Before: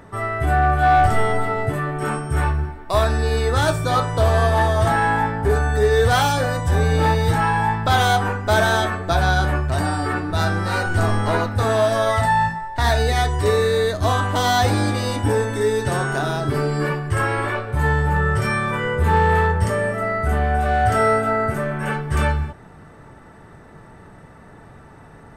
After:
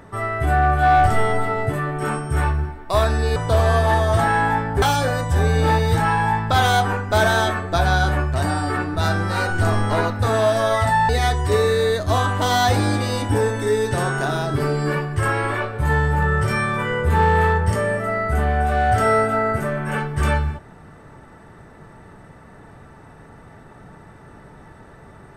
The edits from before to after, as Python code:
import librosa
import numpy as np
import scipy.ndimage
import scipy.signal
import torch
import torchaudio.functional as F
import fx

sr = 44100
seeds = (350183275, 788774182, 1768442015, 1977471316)

y = fx.edit(x, sr, fx.cut(start_s=3.36, length_s=0.68),
    fx.cut(start_s=5.5, length_s=0.68),
    fx.cut(start_s=12.45, length_s=0.58), tone=tone)